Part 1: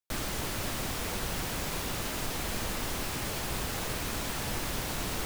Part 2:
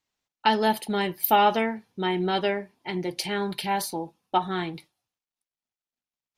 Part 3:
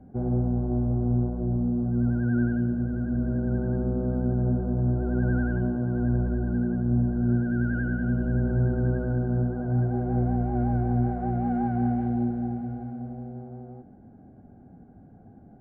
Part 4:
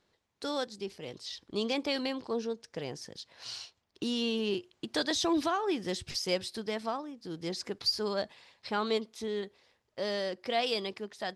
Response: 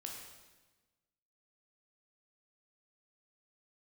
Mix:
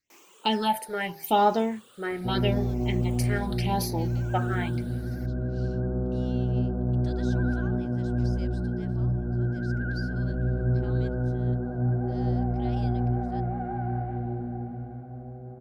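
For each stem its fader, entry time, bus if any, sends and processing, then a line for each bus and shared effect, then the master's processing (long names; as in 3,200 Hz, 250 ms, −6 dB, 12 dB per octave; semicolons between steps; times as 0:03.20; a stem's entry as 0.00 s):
−19.0 dB, 0.00 s, no send, rippled gain that drifts along the octave scale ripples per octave 0.73, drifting +0.73 Hz, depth 11 dB; reverb reduction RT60 1.3 s; high-pass filter 280 Hz 24 dB per octave
+0.5 dB, 0.00 s, no send, all-pass phaser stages 6, 0.84 Hz, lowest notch 230–2,700 Hz
−1.0 dB, 2.10 s, no send, no processing
−18.0 dB, 2.10 s, no send, no processing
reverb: not used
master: hum removal 80.03 Hz, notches 19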